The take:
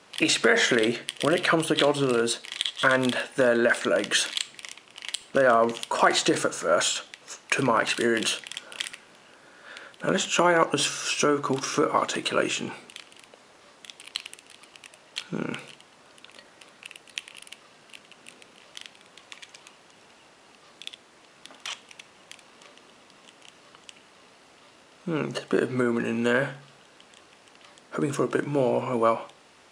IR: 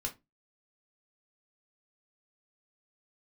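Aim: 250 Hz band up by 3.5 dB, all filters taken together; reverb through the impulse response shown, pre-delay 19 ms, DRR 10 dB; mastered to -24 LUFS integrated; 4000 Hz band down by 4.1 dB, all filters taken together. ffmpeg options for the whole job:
-filter_complex "[0:a]equalizer=f=250:t=o:g=4.5,equalizer=f=4k:t=o:g=-5.5,asplit=2[a][b];[1:a]atrim=start_sample=2205,adelay=19[c];[b][c]afir=irnorm=-1:irlink=0,volume=-11dB[d];[a][d]amix=inputs=2:normalize=0,volume=-0.5dB"

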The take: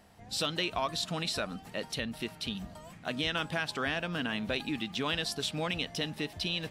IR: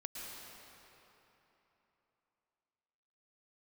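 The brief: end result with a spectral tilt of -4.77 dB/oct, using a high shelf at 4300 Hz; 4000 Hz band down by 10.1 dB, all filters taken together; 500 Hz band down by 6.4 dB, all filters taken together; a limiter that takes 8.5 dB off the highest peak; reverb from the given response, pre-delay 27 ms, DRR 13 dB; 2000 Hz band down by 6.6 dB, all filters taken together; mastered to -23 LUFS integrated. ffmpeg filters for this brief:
-filter_complex "[0:a]equalizer=f=500:t=o:g=-8,equalizer=f=2k:t=o:g=-4.5,equalizer=f=4k:t=o:g=-7,highshelf=f=4.3k:g=-8.5,alimiter=level_in=9dB:limit=-24dB:level=0:latency=1,volume=-9dB,asplit=2[a][b];[1:a]atrim=start_sample=2205,adelay=27[c];[b][c]afir=irnorm=-1:irlink=0,volume=-12dB[d];[a][d]amix=inputs=2:normalize=0,volume=19.5dB"

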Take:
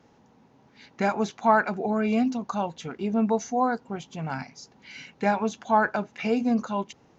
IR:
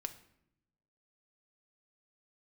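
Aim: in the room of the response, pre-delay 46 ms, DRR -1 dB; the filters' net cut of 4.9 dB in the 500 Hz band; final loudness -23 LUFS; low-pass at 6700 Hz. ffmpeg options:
-filter_complex "[0:a]lowpass=6.7k,equalizer=f=500:t=o:g=-6.5,asplit=2[a][b];[1:a]atrim=start_sample=2205,adelay=46[c];[b][c]afir=irnorm=-1:irlink=0,volume=3dB[d];[a][d]amix=inputs=2:normalize=0,volume=1dB"

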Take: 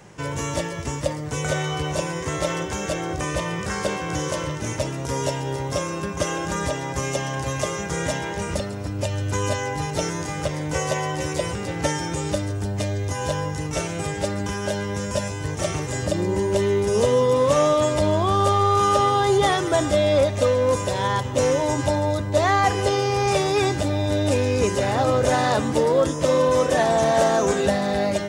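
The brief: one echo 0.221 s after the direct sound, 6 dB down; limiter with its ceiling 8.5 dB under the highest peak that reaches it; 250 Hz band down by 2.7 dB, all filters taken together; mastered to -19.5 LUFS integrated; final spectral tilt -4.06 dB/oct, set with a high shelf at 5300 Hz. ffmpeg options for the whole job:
-af "equalizer=f=250:t=o:g=-4,highshelf=f=5.3k:g=7,alimiter=limit=-15dB:level=0:latency=1,aecho=1:1:221:0.501,volume=4.5dB"

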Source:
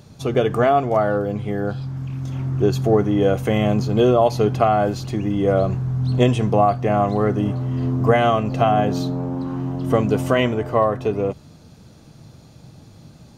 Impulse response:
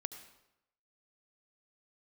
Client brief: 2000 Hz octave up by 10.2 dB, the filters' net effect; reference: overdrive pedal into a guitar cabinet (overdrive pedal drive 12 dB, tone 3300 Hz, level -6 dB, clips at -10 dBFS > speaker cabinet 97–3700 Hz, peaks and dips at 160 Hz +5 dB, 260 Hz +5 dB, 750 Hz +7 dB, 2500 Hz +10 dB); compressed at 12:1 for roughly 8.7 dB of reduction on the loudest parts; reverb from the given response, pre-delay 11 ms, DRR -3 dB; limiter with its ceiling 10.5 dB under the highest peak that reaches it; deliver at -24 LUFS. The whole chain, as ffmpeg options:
-filter_complex "[0:a]equalizer=f=2k:t=o:g=8.5,acompressor=threshold=-19dB:ratio=12,alimiter=limit=-19dB:level=0:latency=1,asplit=2[a][b];[1:a]atrim=start_sample=2205,adelay=11[c];[b][c]afir=irnorm=-1:irlink=0,volume=5dB[d];[a][d]amix=inputs=2:normalize=0,asplit=2[e][f];[f]highpass=f=720:p=1,volume=12dB,asoftclip=type=tanh:threshold=-10dB[g];[e][g]amix=inputs=2:normalize=0,lowpass=f=3.3k:p=1,volume=-6dB,highpass=97,equalizer=f=160:t=q:w=4:g=5,equalizer=f=260:t=q:w=4:g=5,equalizer=f=750:t=q:w=4:g=7,equalizer=f=2.5k:t=q:w=4:g=10,lowpass=f=3.7k:w=0.5412,lowpass=f=3.7k:w=1.3066,volume=-5dB"

